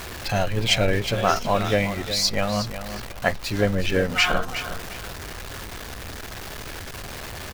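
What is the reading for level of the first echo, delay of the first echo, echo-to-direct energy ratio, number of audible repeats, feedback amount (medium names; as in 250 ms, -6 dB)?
-11.0 dB, 364 ms, -10.5 dB, 2, 25%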